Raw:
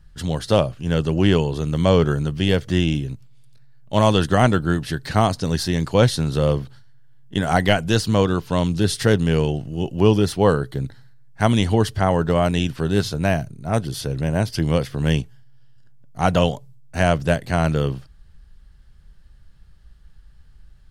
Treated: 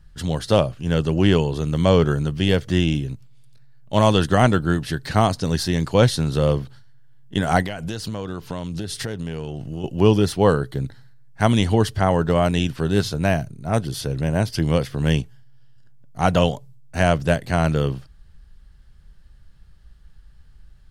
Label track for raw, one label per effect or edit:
7.620000	9.840000	compressor 10:1, threshold -24 dBFS

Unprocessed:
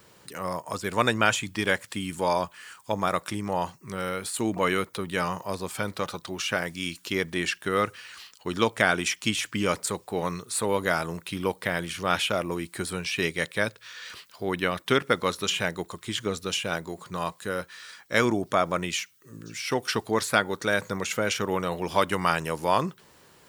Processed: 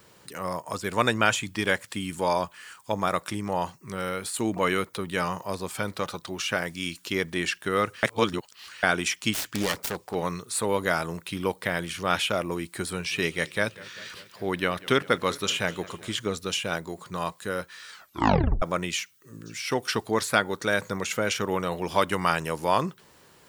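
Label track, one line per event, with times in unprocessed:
8.030000	8.830000	reverse
9.330000	10.150000	self-modulated delay depth 0.9 ms
12.770000	16.180000	warbling echo 0.197 s, feedback 70%, depth 125 cents, level -20.5 dB
17.890000	17.890000	tape stop 0.73 s

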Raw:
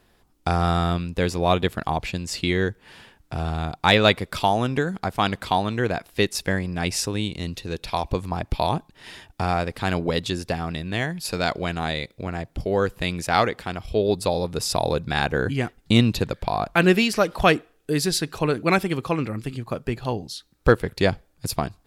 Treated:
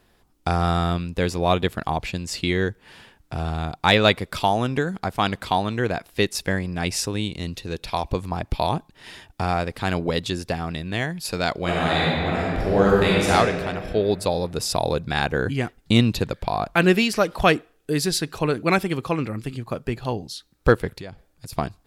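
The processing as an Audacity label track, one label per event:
11.610000	13.300000	reverb throw, RT60 2.4 s, DRR -6 dB
20.890000	21.530000	compressor 5:1, threshold -34 dBFS

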